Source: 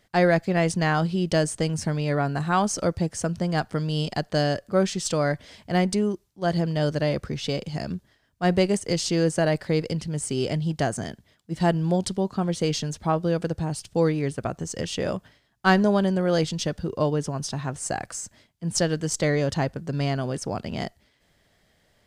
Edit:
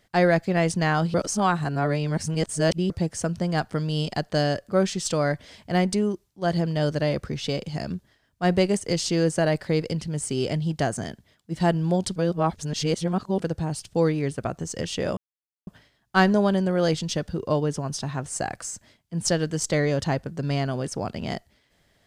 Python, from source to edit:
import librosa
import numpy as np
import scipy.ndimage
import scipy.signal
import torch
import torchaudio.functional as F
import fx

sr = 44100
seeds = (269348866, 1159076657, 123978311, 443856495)

y = fx.edit(x, sr, fx.reverse_span(start_s=1.14, length_s=1.76),
    fx.reverse_span(start_s=12.16, length_s=1.24),
    fx.insert_silence(at_s=15.17, length_s=0.5), tone=tone)